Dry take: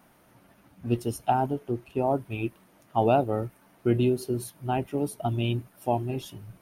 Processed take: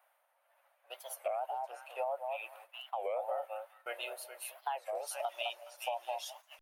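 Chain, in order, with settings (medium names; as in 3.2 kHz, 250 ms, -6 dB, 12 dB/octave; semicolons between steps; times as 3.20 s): Chebyshev high-pass 540 Hz, order 6; peak limiter -22 dBFS, peak gain reduction 10 dB; repeats whose band climbs or falls 209 ms, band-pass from 800 Hz, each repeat 1.4 oct, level -3 dB; tremolo 1.5 Hz, depth 46%; peaking EQ 5.6 kHz -9.5 dB 0.89 oct, from 4.96 s +6 dB; gate -56 dBFS, range -11 dB; compression 5:1, threshold -36 dBFS, peak gain reduction 9.5 dB; warped record 33 1/3 rpm, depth 250 cents; trim +2.5 dB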